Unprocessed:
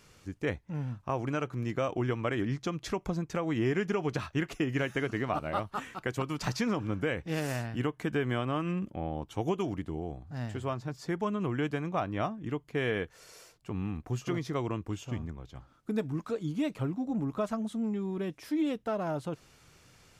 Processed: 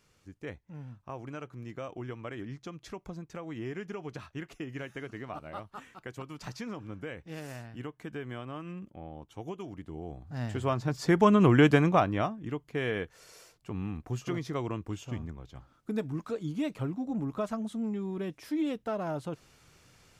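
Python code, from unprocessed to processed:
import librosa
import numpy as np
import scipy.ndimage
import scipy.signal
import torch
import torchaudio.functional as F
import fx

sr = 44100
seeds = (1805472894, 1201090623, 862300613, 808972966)

y = fx.gain(x, sr, db=fx.line((9.69, -9.0), (10.26, 0.0), (11.31, 11.0), (11.82, 11.0), (12.36, -1.0)))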